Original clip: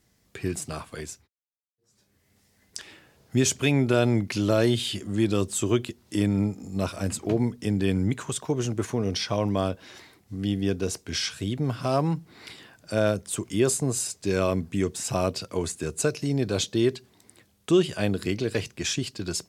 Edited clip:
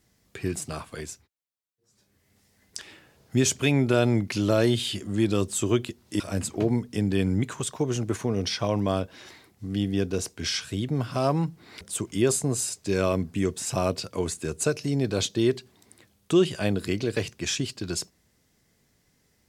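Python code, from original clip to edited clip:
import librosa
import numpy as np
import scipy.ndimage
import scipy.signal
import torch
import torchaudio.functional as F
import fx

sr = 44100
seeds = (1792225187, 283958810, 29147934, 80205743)

y = fx.edit(x, sr, fx.cut(start_s=6.2, length_s=0.69),
    fx.cut(start_s=12.5, length_s=0.69), tone=tone)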